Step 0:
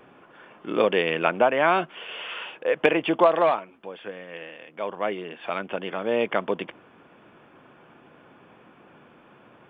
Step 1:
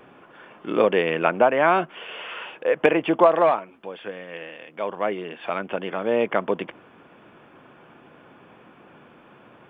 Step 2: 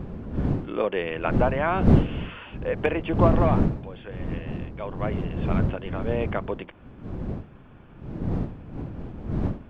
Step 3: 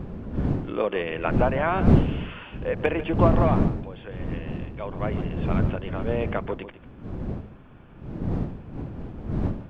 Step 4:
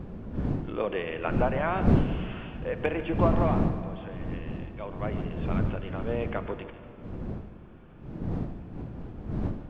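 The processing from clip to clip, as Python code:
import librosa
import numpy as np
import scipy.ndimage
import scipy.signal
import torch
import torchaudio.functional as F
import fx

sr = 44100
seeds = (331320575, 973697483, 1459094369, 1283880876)

y1 = fx.dynamic_eq(x, sr, hz=3800.0, q=1.1, threshold_db=-43.0, ratio=4.0, max_db=-7)
y1 = y1 * 10.0 ** (2.5 / 20.0)
y2 = fx.dmg_wind(y1, sr, seeds[0], corner_hz=200.0, level_db=-20.0)
y2 = y2 * 10.0 ** (-6.5 / 20.0)
y3 = y2 + 10.0 ** (-13.5 / 20.0) * np.pad(y2, (int(146 * sr / 1000.0), 0))[:len(y2)]
y4 = fx.rev_plate(y3, sr, seeds[1], rt60_s=3.0, hf_ratio=0.8, predelay_ms=0, drr_db=10.0)
y4 = y4 * 10.0 ** (-4.5 / 20.0)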